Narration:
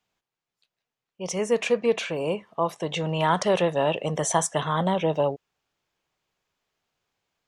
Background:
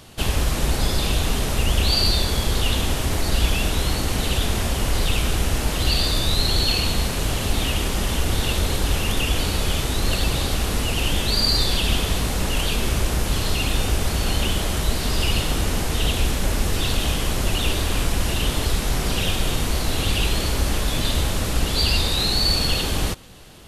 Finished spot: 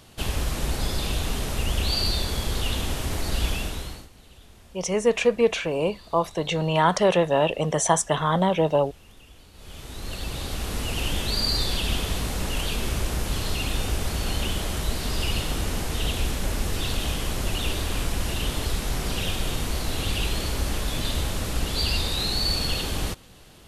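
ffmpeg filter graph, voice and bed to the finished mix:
-filter_complex "[0:a]adelay=3550,volume=1.33[s0];[1:a]volume=7.94,afade=t=out:st=3.49:d=0.6:silence=0.0707946,afade=t=in:st=9.53:d=1.46:silence=0.0668344[s1];[s0][s1]amix=inputs=2:normalize=0"

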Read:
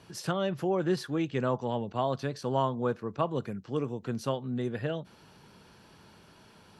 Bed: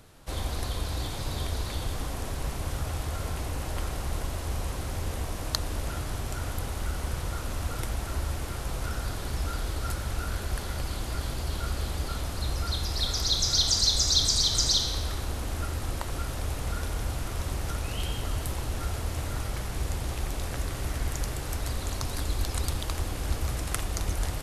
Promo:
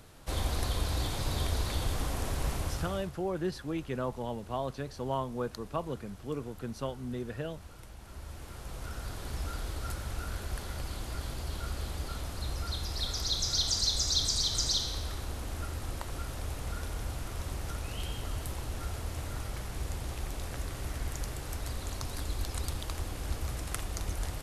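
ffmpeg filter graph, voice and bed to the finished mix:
-filter_complex "[0:a]adelay=2550,volume=0.562[s0];[1:a]volume=4.22,afade=t=out:st=2.54:d=0.59:silence=0.125893,afade=t=in:st=7.98:d=1.39:silence=0.237137[s1];[s0][s1]amix=inputs=2:normalize=0"

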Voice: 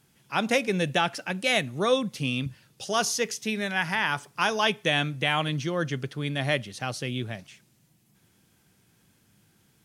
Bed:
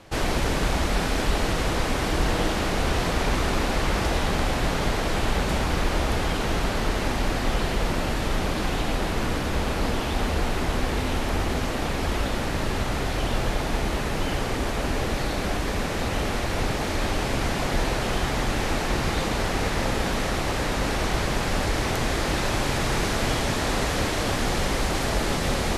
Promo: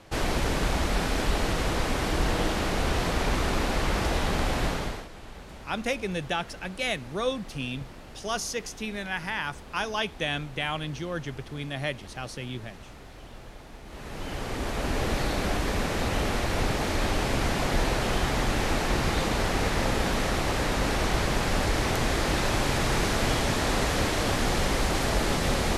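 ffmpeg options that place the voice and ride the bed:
-filter_complex "[0:a]adelay=5350,volume=0.562[s0];[1:a]volume=6.68,afade=t=out:st=4.64:d=0.44:silence=0.133352,afade=t=in:st=13.85:d=1.26:silence=0.112202[s1];[s0][s1]amix=inputs=2:normalize=0"

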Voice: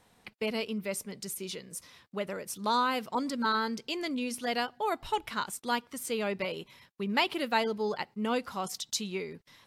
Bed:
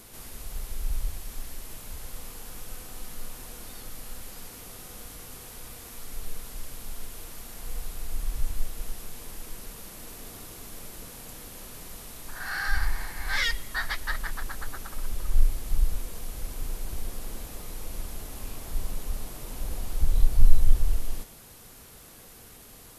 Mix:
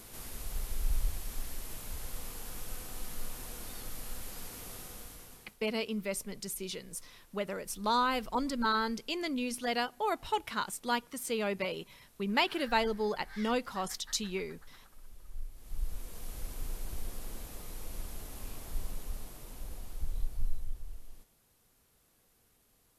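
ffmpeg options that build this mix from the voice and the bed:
-filter_complex "[0:a]adelay=5200,volume=0.891[s0];[1:a]volume=5.01,afade=t=out:st=4.75:d=0.82:silence=0.105925,afade=t=in:st=15.53:d=0.79:silence=0.16788,afade=t=out:st=18.55:d=2.19:silence=0.188365[s1];[s0][s1]amix=inputs=2:normalize=0"

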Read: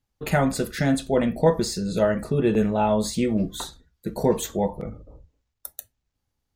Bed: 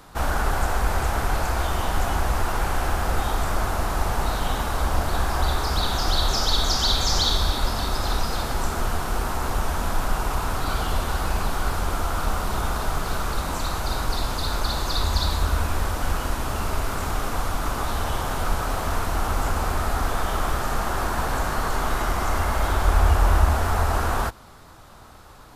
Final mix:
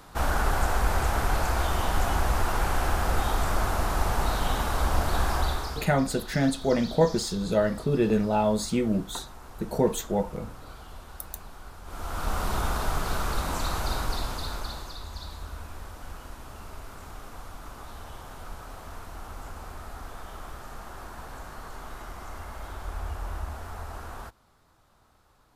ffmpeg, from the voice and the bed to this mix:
-filter_complex "[0:a]adelay=5550,volume=0.75[s0];[1:a]volume=5.96,afade=t=out:st=5.31:d=0.58:silence=0.125893,afade=t=in:st=11.84:d=0.6:silence=0.133352,afade=t=out:st=13.82:d=1.15:silence=0.199526[s1];[s0][s1]amix=inputs=2:normalize=0"

